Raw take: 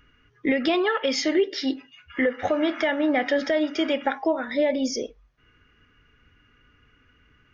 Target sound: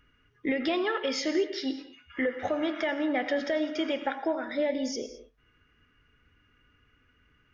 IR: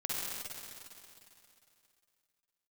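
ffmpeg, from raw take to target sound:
-filter_complex "[0:a]asplit=2[s0][s1];[1:a]atrim=start_sample=2205,afade=t=out:st=0.18:d=0.01,atrim=end_sample=8379,asetrate=26019,aresample=44100[s2];[s1][s2]afir=irnorm=-1:irlink=0,volume=0.2[s3];[s0][s3]amix=inputs=2:normalize=0,volume=0.422"

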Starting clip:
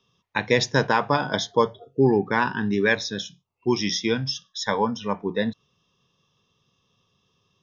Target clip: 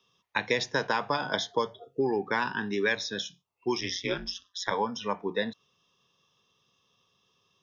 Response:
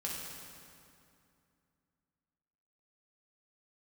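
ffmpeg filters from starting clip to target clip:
-filter_complex "[0:a]lowshelf=f=250:g=-11.5,asplit=3[s0][s1][s2];[s0]afade=t=out:st=3.8:d=0.02[s3];[s1]aeval=exprs='val(0)*sin(2*PI*92*n/s)':c=same,afade=t=in:st=3.8:d=0.02,afade=t=out:st=4.7:d=0.02[s4];[s2]afade=t=in:st=4.7:d=0.02[s5];[s3][s4][s5]amix=inputs=3:normalize=0,acrossover=split=250|3200[s6][s7][s8];[s6]acompressor=threshold=0.0112:ratio=4[s9];[s7]acompressor=threshold=0.0562:ratio=4[s10];[s8]acompressor=threshold=0.0178:ratio=4[s11];[s9][s10][s11]amix=inputs=3:normalize=0"

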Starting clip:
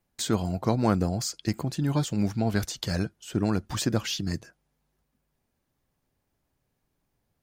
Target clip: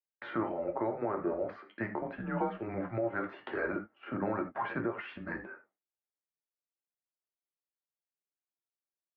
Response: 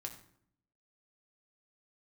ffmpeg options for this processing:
-filter_complex "[0:a]atempo=0.81,highpass=f=440:t=q:w=0.5412,highpass=f=440:t=q:w=1.307,lowpass=f=2100:t=q:w=0.5176,lowpass=f=2100:t=q:w=0.7071,lowpass=f=2100:t=q:w=1.932,afreqshift=-110,asplit=2[s0][s1];[s1]acompressor=threshold=0.00631:ratio=6,volume=1[s2];[s0][s2]amix=inputs=2:normalize=0,agate=range=0.0224:threshold=0.00158:ratio=3:detection=peak[s3];[1:a]atrim=start_sample=2205,afade=t=out:st=0.14:d=0.01,atrim=end_sample=6615[s4];[s3][s4]afir=irnorm=-1:irlink=0,alimiter=level_in=1.41:limit=0.0631:level=0:latency=1:release=232,volume=0.708,volume=1.68"

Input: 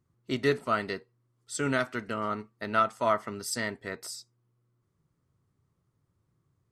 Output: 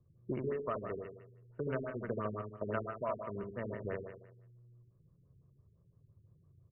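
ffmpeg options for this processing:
-filter_complex "[0:a]aecho=1:1:1.8:0.51,acompressor=threshold=0.0126:ratio=12,acrossover=split=340|1800[s0][s1][s2];[s2]alimiter=level_in=3.55:limit=0.0631:level=0:latency=1:release=337,volume=0.282[s3];[s0][s1][s3]amix=inputs=3:normalize=0,adynamicsmooth=sensitivity=7.5:basefreq=670,asplit=2[s4][s5];[s5]aecho=0:1:75|150|225|300|375|450|525:0.631|0.341|0.184|0.0994|0.0537|0.029|0.0156[s6];[s4][s6]amix=inputs=2:normalize=0,afftfilt=real='re*lt(b*sr/1024,420*pow(3100/420,0.5+0.5*sin(2*PI*5.9*pts/sr)))':imag='im*lt(b*sr/1024,420*pow(3100/420,0.5+0.5*sin(2*PI*5.9*pts/sr)))':win_size=1024:overlap=0.75,volume=1.78"

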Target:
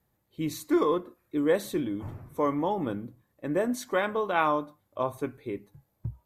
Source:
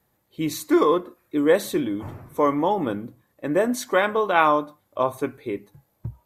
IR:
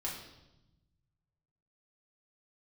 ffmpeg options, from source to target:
-af "lowshelf=f=190:g=7.5,volume=0.422"

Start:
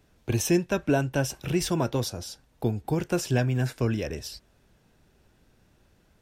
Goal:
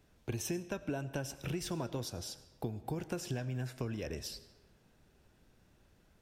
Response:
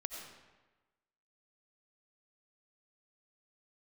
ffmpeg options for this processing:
-filter_complex "[0:a]acompressor=threshold=0.0316:ratio=6,asplit=2[s0][s1];[1:a]atrim=start_sample=2205[s2];[s1][s2]afir=irnorm=-1:irlink=0,volume=0.398[s3];[s0][s3]amix=inputs=2:normalize=0,volume=0.473"

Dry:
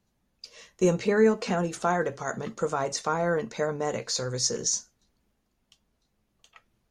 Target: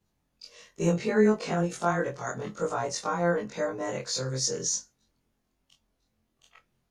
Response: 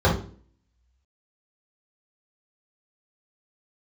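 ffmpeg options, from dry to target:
-af "afftfilt=real='re':imag='-im':win_size=2048:overlap=0.75,volume=1.33"

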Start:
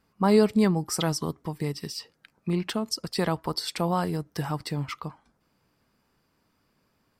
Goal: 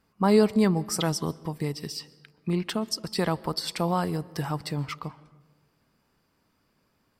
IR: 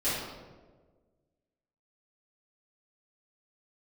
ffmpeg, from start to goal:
-filter_complex "[0:a]asplit=2[s0][s1];[1:a]atrim=start_sample=2205,adelay=118[s2];[s1][s2]afir=irnorm=-1:irlink=0,volume=0.0282[s3];[s0][s3]amix=inputs=2:normalize=0"

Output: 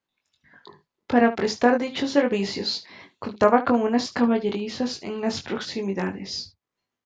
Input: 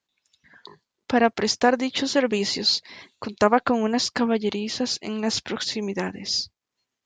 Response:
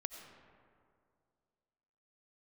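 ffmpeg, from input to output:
-af "highshelf=f=3300:g=-12,aecho=1:1:21|73:0.596|0.178"

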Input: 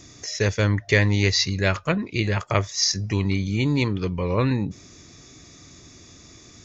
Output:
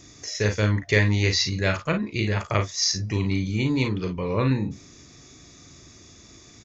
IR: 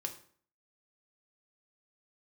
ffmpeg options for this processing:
-af "aecho=1:1:38|52:0.447|0.266,volume=0.75"

